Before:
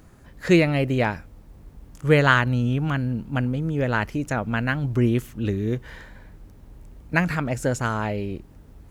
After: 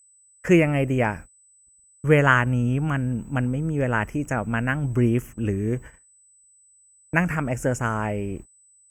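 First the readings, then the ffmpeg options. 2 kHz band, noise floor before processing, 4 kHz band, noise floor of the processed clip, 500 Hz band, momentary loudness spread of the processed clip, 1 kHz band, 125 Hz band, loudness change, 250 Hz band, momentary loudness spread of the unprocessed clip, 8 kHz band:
0.0 dB, −49 dBFS, −6.5 dB, −57 dBFS, 0.0 dB, 10 LU, 0.0 dB, 0.0 dB, 0.0 dB, 0.0 dB, 12 LU, +1.0 dB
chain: -af "agate=range=-46dB:threshold=-36dB:ratio=16:detection=peak,aeval=exprs='val(0)+0.002*sin(2*PI*8000*n/s)':channel_layout=same,asuperstop=centerf=4000:order=4:qfactor=1.4"

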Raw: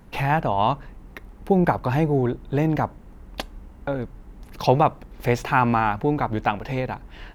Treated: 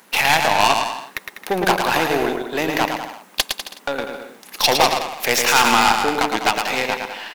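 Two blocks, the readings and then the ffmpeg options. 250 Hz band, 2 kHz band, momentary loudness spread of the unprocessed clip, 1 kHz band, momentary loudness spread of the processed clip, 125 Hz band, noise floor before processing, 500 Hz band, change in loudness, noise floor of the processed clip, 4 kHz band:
−2.0 dB, +11.0 dB, 16 LU, +5.0 dB, 13 LU, −11.0 dB, −46 dBFS, +2.0 dB, +4.5 dB, −48 dBFS, +19.0 dB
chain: -filter_complex "[0:a]highpass=frequency=190:width=0.5412,highpass=frequency=190:width=1.3066,asplit=2[link_01][link_02];[link_02]highpass=frequency=720:poles=1,volume=22dB,asoftclip=type=tanh:threshold=-2.5dB[link_03];[link_01][link_03]amix=inputs=2:normalize=0,lowpass=frequency=4100:poles=1,volume=-6dB,asplit=2[link_04][link_05];[link_05]aecho=0:1:110|198|268.4|324.7|369.8:0.631|0.398|0.251|0.158|0.1[link_06];[link_04][link_06]amix=inputs=2:normalize=0,crystalizer=i=6.5:c=0,aeval=exprs='2.37*(cos(1*acos(clip(val(0)/2.37,-1,1)))-cos(1*PI/2))+0.422*(cos(2*acos(clip(val(0)/2.37,-1,1)))-cos(2*PI/2))+0.376*(cos(4*acos(clip(val(0)/2.37,-1,1)))-cos(4*PI/2))+0.596*(cos(5*acos(clip(val(0)/2.37,-1,1)))-cos(5*PI/2))+0.531*(cos(7*acos(clip(val(0)/2.37,-1,1)))-cos(7*PI/2))':channel_layout=same,volume=-8.5dB"

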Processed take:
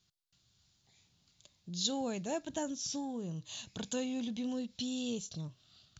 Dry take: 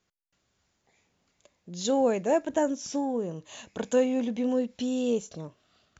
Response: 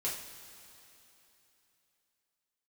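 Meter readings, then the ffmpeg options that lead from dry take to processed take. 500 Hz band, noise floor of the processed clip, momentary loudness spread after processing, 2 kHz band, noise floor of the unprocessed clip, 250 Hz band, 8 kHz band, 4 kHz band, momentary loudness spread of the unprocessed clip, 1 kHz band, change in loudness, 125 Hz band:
−15.0 dB, −75 dBFS, 10 LU, −8.5 dB, −77 dBFS, −8.5 dB, can't be measured, +2.0 dB, 17 LU, −11.5 dB, −10.0 dB, −1.5 dB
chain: -filter_complex "[0:a]equalizer=frequency=125:width_type=o:width=1:gain=8,equalizer=frequency=250:width_type=o:width=1:gain=-4,equalizer=frequency=500:width_type=o:width=1:gain=-11,equalizer=frequency=1000:width_type=o:width=1:gain=-4,equalizer=frequency=2000:width_type=o:width=1:gain=-8,equalizer=frequency=4000:width_type=o:width=1:gain=10,asplit=2[link_01][link_02];[link_02]acompressor=threshold=-45dB:ratio=6,volume=-2dB[link_03];[link_01][link_03]amix=inputs=2:normalize=0,volume=-5dB"

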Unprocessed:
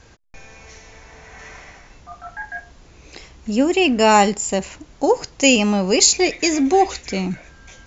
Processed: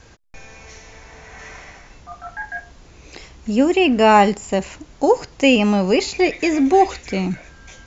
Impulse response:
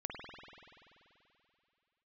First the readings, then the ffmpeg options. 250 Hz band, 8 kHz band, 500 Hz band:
+1.5 dB, can't be measured, +1.5 dB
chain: -filter_complex "[0:a]acrossover=split=3200[link_01][link_02];[link_02]acompressor=threshold=-38dB:ratio=4:attack=1:release=60[link_03];[link_01][link_03]amix=inputs=2:normalize=0,volume=1.5dB"

